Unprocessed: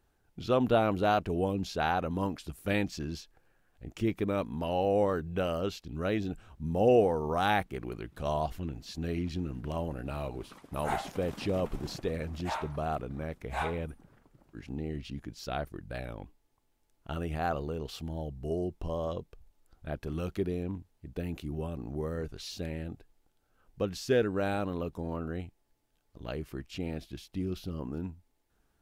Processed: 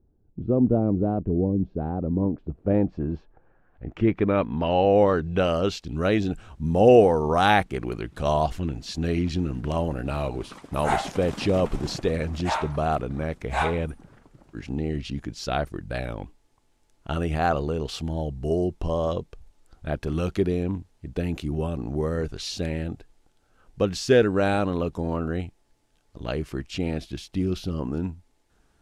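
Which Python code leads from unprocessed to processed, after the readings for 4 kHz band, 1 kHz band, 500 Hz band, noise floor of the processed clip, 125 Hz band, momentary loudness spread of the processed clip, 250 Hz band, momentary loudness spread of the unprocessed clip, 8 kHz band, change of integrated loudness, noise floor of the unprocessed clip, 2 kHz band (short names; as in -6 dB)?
+7.5 dB, +6.5 dB, +8.0 dB, -64 dBFS, +8.5 dB, 13 LU, +8.5 dB, 14 LU, +8.0 dB, +8.0 dB, -73 dBFS, +7.0 dB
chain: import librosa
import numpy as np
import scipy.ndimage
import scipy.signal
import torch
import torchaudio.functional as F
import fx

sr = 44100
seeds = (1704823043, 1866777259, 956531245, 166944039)

y = fx.filter_sweep_lowpass(x, sr, from_hz=320.0, to_hz=8800.0, start_s=1.99, end_s=5.88, q=0.96)
y = y * librosa.db_to_amplitude(8.5)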